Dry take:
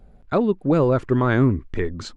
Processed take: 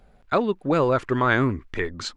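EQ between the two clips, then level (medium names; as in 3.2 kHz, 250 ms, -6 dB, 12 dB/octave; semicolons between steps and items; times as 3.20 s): tilt shelf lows -7 dB, about 650 Hz; treble shelf 5.4 kHz -4.5 dB; 0.0 dB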